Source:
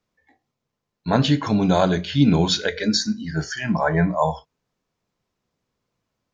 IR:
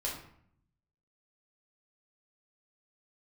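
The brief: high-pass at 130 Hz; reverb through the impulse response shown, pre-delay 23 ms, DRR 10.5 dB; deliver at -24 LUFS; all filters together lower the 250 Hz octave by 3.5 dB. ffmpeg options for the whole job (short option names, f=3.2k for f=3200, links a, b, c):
-filter_complex "[0:a]highpass=130,equalizer=f=250:t=o:g=-4,asplit=2[a][b];[1:a]atrim=start_sample=2205,adelay=23[c];[b][c]afir=irnorm=-1:irlink=0,volume=-13.5dB[d];[a][d]amix=inputs=2:normalize=0,volume=-2dB"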